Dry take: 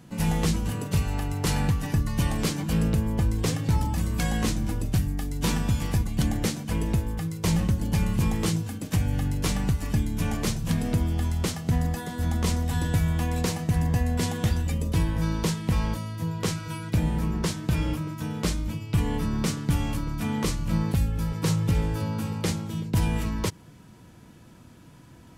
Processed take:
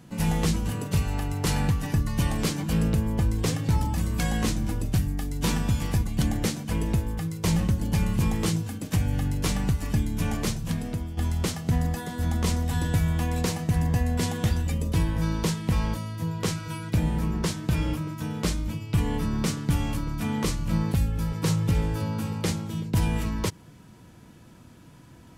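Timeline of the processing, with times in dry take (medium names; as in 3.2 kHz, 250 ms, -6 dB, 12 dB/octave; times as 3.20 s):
10.39–11.17 s: fade out, to -10.5 dB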